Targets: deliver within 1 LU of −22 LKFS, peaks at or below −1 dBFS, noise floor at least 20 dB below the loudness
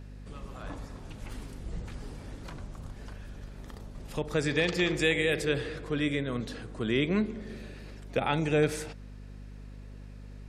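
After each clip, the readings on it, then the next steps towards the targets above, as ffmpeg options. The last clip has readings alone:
mains hum 50 Hz; hum harmonics up to 250 Hz; level of the hum −43 dBFS; integrated loudness −30.0 LKFS; sample peak −13.0 dBFS; target loudness −22.0 LKFS
→ -af "bandreject=frequency=50:width_type=h:width=4,bandreject=frequency=100:width_type=h:width=4,bandreject=frequency=150:width_type=h:width=4,bandreject=frequency=200:width_type=h:width=4,bandreject=frequency=250:width_type=h:width=4"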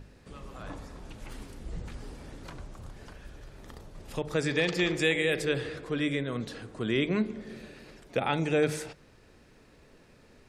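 mains hum none found; integrated loudness −30.0 LKFS; sample peak −13.0 dBFS; target loudness −22.0 LKFS
→ -af "volume=8dB"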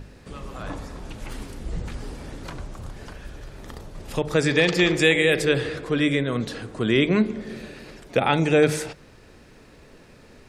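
integrated loudness −22.0 LKFS; sample peak −5.0 dBFS; background noise floor −50 dBFS

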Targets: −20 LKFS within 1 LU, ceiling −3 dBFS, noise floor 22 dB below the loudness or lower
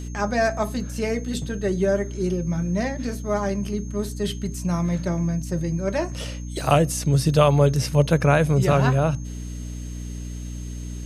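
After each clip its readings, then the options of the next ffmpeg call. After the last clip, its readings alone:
mains hum 60 Hz; hum harmonics up to 300 Hz; level of the hum −30 dBFS; interfering tone 6,400 Hz; level of the tone −46 dBFS; integrated loudness −23.0 LKFS; sample peak −2.5 dBFS; target loudness −20.0 LKFS
→ -af "bandreject=frequency=60:width_type=h:width=6,bandreject=frequency=120:width_type=h:width=6,bandreject=frequency=180:width_type=h:width=6,bandreject=frequency=240:width_type=h:width=6,bandreject=frequency=300:width_type=h:width=6"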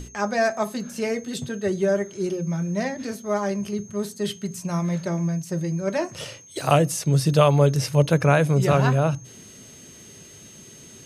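mains hum none found; interfering tone 6,400 Hz; level of the tone −46 dBFS
→ -af "bandreject=frequency=6400:width=30"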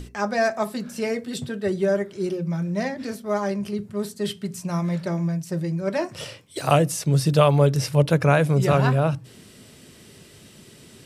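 interfering tone none found; integrated loudness −23.5 LKFS; sample peak −3.0 dBFS; target loudness −20.0 LKFS
→ -af "volume=3.5dB,alimiter=limit=-3dB:level=0:latency=1"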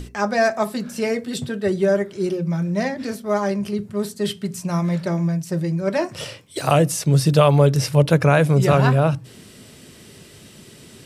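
integrated loudness −20.0 LKFS; sample peak −3.0 dBFS; background noise floor −45 dBFS

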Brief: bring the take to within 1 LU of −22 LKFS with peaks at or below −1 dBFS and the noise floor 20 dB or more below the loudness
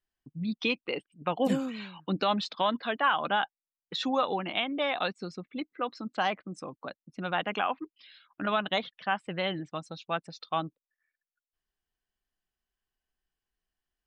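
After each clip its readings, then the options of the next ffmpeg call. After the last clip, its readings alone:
integrated loudness −31.5 LKFS; sample peak −15.5 dBFS; target loudness −22.0 LKFS
→ -af "volume=9.5dB"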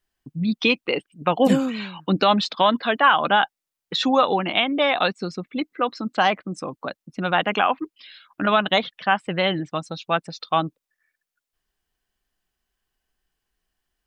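integrated loudness −22.0 LKFS; sample peak −6.0 dBFS; background noise floor −86 dBFS

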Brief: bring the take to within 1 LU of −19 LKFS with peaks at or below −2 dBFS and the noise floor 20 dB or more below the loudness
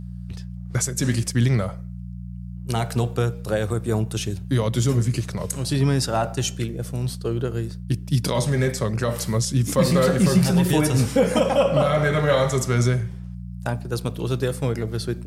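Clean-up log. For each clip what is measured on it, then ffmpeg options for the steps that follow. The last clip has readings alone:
mains hum 60 Hz; hum harmonics up to 180 Hz; level of the hum −31 dBFS; integrated loudness −22.5 LKFS; sample peak −7.0 dBFS; target loudness −19.0 LKFS
→ -af "bandreject=frequency=60:width_type=h:width=4,bandreject=frequency=120:width_type=h:width=4,bandreject=frequency=180:width_type=h:width=4"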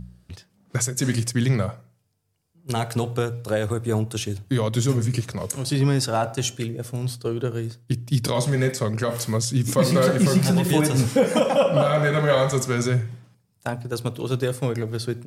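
mains hum none found; integrated loudness −23.0 LKFS; sample peak −7.5 dBFS; target loudness −19.0 LKFS
→ -af "volume=4dB"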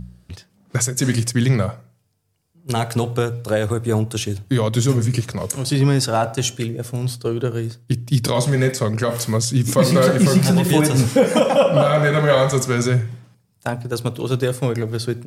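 integrated loudness −19.0 LKFS; sample peak −3.5 dBFS; background noise floor −61 dBFS

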